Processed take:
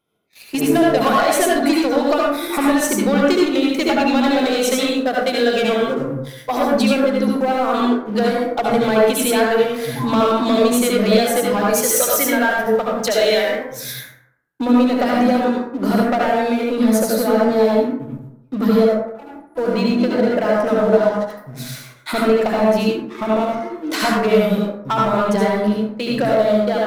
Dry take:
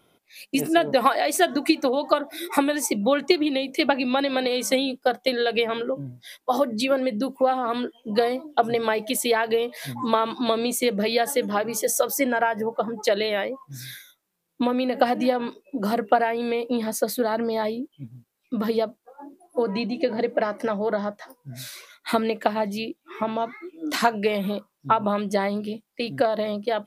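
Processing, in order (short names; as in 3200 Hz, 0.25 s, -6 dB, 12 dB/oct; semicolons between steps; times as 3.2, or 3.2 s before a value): 11.6–13.93 tilt +2 dB/oct; sample leveller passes 3; reverb RT60 0.80 s, pre-delay 63 ms, DRR -3.5 dB; gain -8 dB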